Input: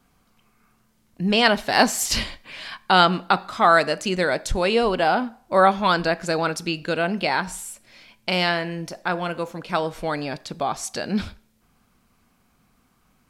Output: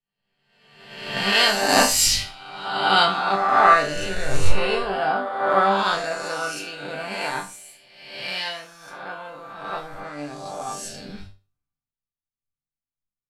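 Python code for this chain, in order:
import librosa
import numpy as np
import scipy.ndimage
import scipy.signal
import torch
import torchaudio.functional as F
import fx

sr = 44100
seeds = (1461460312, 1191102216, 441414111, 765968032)

y = fx.spec_swells(x, sr, rise_s=2.08)
y = fx.resonator_bank(y, sr, root=43, chord='sus4', decay_s=0.38)
y = fx.band_widen(y, sr, depth_pct=100)
y = y * librosa.db_to_amplitude(6.5)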